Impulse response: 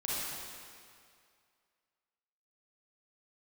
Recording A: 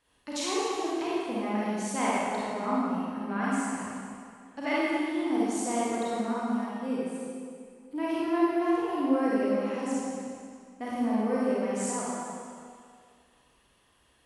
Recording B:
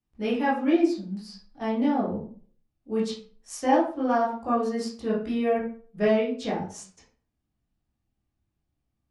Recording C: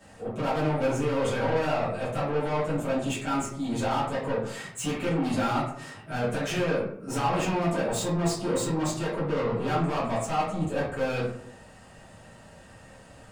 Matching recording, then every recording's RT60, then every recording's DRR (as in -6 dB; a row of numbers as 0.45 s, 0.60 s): A; 2.2 s, 0.45 s, 0.65 s; -8.0 dB, -7.5 dB, -12.0 dB